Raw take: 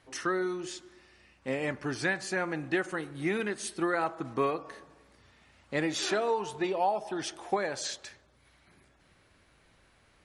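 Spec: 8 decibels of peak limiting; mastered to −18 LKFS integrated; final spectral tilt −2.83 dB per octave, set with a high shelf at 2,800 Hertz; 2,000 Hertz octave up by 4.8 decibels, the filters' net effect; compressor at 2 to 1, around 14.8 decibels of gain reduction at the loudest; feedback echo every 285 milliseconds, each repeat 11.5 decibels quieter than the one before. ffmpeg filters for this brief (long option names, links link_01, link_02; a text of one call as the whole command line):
ffmpeg -i in.wav -af "equalizer=frequency=2000:width_type=o:gain=4,highshelf=frequency=2800:gain=5.5,acompressor=threshold=-50dB:ratio=2,alimiter=level_in=9.5dB:limit=-24dB:level=0:latency=1,volume=-9.5dB,aecho=1:1:285|570|855:0.266|0.0718|0.0194,volume=26.5dB" out.wav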